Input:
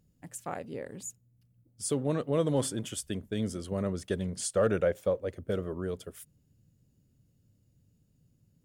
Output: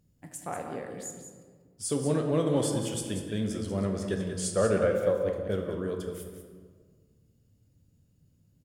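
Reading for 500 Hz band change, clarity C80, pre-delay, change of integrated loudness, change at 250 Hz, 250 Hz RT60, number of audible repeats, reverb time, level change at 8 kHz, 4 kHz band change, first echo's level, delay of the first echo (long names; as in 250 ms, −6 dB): +2.5 dB, 5.0 dB, 10 ms, +2.5 dB, +3.0 dB, 1.9 s, 1, 1.7 s, +1.5 dB, +2.0 dB, −8.5 dB, 188 ms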